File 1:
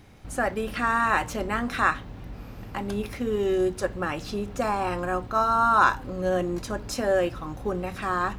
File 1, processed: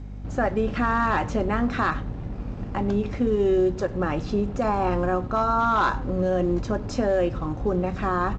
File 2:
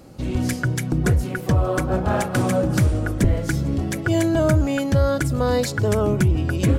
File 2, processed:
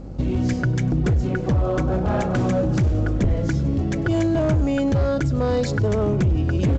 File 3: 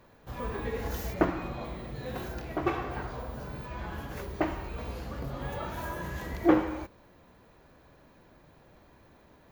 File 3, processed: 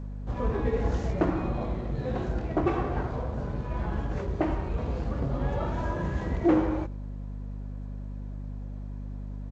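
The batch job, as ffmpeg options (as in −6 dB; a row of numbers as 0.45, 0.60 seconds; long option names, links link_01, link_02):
-filter_complex "[0:a]asplit=2[link_01][link_02];[link_02]acrusher=bits=5:mix=0:aa=0.5,volume=-11dB[link_03];[link_01][link_03]amix=inputs=2:normalize=0,asoftclip=type=hard:threshold=-12.5dB,tiltshelf=frequency=1300:gain=6.5,aecho=1:1:99|198:0.0631|0.0107,acrossover=split=2100[link_04][link_05];[link_04]alimiter=limit=-13.5dB:level=0:latency=1:release=105[link_06];[link_06][link_05]amix=inputs=2:normalize=0,aeval=exprs='val(0)+0.02*(sin(2*PI*50*n/s)+sin(2*PI*2*50*n/s)/2+sin(2*PI*3*50*n/s)/3+sin(2*PI*4*50*n/s)/4+sin(2*PI*5*50*n/s)/5)':channel_layout=same,volume=-1dB" -ar 16000 -c:a g722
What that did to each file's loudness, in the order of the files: +1.5, −0.5, +2.5 LU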